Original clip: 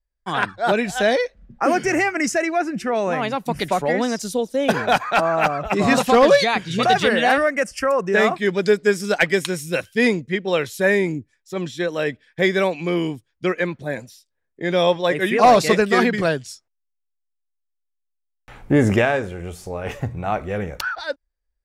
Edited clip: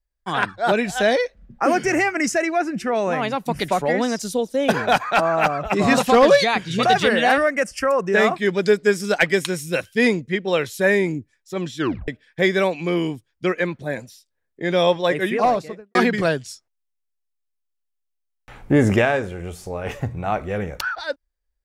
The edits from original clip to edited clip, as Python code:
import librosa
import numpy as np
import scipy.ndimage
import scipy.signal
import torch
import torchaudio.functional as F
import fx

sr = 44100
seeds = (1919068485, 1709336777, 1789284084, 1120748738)

y = fx.studio_fade_out(x, sr, start_s=15.06, length_s=0.89)
y = fx.edit(y, sr, fx.tape_stop(start_s=11.78, length_s=0.3), tone=tone)